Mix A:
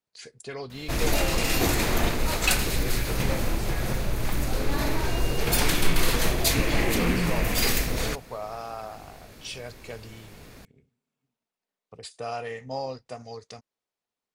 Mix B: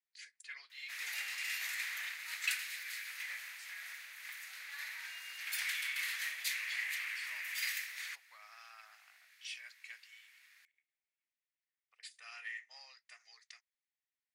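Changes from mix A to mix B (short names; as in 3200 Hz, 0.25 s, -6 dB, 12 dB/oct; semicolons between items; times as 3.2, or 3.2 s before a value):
background -4.5 dB; master: add ladder high-pass 1700 Hz, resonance 60%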